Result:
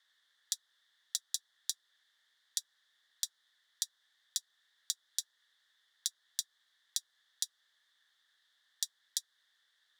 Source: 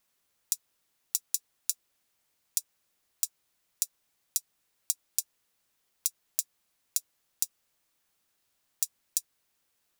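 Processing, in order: dynamic bell 2.4 kHz, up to -6 dB, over -57 dBFS, Q 1.5; two resonant band-passes 2.5 kHz, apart 0.96 oct; trim +14.5 dB

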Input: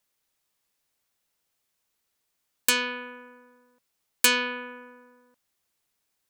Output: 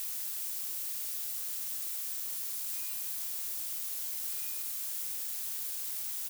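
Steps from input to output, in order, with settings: static phaser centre 740 Hz, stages 4; feedback comb 190 Hz, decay 1.3 s, mix 90%; on a send: feedback delay 81 ms, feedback 32%, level -15 dB; on the sum: integer overflow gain 37 dB; word length cut 6-bit, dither triangular; pre-emphasis filter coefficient 0.8; buffer glitch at 2.90 s, samples 128, times 10; trim -3 dB

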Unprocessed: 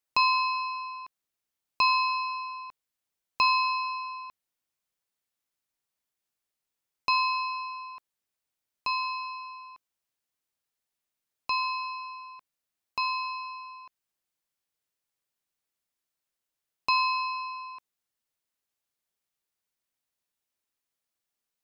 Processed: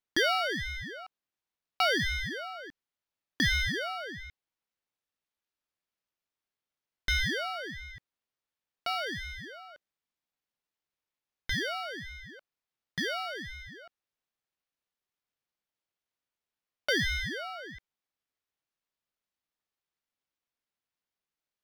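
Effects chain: median filter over 5 samples; ring modulator with a swept carrier 690 Hz, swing 60%, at 1.4 Hz

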